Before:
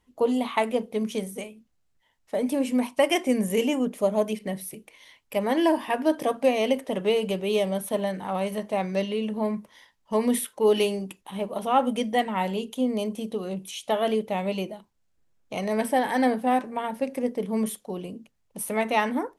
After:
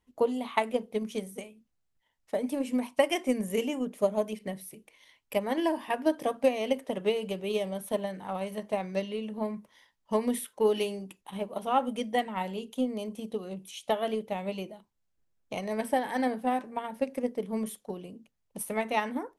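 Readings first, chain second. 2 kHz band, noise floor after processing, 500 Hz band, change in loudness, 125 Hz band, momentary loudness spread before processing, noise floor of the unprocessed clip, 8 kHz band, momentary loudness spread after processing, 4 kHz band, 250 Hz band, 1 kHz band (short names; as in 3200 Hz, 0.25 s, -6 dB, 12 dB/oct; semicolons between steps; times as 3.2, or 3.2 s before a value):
-5.0 dB, -77 dBFS, -4.5 dB, -5.0 dB, n/a, 11 LU, -70 dBFS, -6.5 dB, 12 LU, -6.0 dB, -6.0 dB, -5.0 dB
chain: transient shaper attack +7 dB, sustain +1 dB; gain -8 dB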